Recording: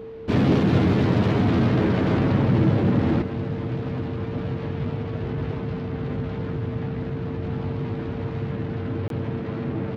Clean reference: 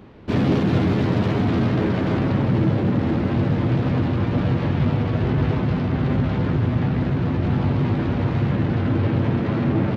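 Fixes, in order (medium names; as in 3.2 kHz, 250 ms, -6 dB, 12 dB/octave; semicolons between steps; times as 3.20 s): band-stop 450 Hz, Q 30; interpolate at 9.08 s, 22 ms; trim 0 dB, from 3.22 s +8 dB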